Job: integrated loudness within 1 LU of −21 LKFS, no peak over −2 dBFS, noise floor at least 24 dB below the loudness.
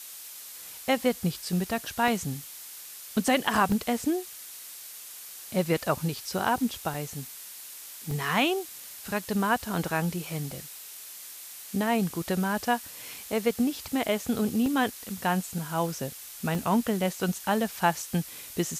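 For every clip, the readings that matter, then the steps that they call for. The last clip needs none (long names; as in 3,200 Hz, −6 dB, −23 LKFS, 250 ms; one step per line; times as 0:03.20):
number of dropouts 7; longest dropout 2.1 ms; background noise floor −44 dBFS; target noise floor −53 dBFS; integrated loudness −28.5 LKFS; sample peak −10.5 dBFS; target loudness −21.0 LKFS
→ repair the gap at 0:02.08/0:03.72/0:06.94/0:08.11/0:14.66/0:16.55/0:17.81, 2.1 ms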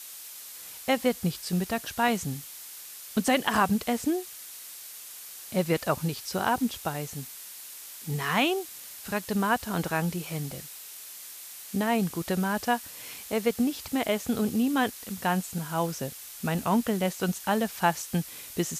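number of dropouts 0; background noise floor −44 dBFS; target noise floor −53 dBFS
→ broadband denoise 9 dB, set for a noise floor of −44 dBFS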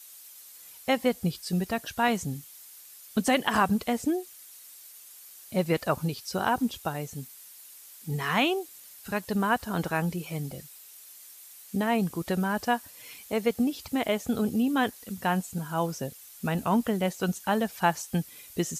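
background noise floor −49 dBFS; target noise floor −53 dBFS
→ broadband denoise 6 dB, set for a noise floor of −49 dBFS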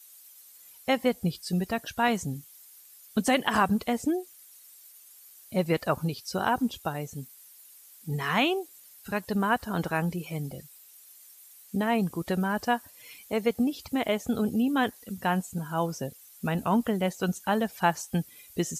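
background noise floor −53 dBFS; integrated loudness −29.0 LKFS; sample peak −11.0 dBFS; target loudness −21.0 LKFS
→ level +8 dB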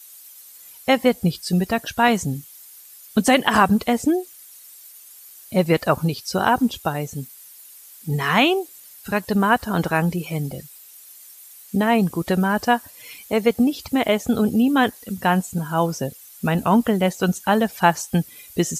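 integrated loudness −21.0 LKFS; sample peak −3.0 dBFS; background noise floor −45 dBFS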